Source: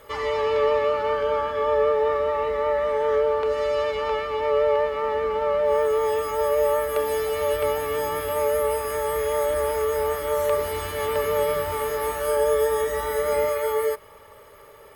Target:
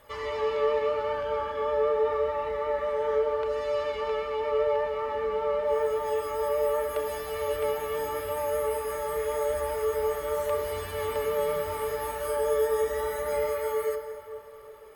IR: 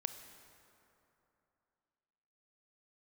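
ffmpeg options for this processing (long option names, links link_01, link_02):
-filter_complex "[0:a]flanger=delay=1.1:depth=4.3:regen=-51:speed=0.83:shape=sinusoidal[link_01];[1:a]atrim=start_sample=2205,asetrate=40131,aresample=44100[link_02];[link_01][link_02]afir=irnorm=-1:irlink=0,volume=-1.5dB"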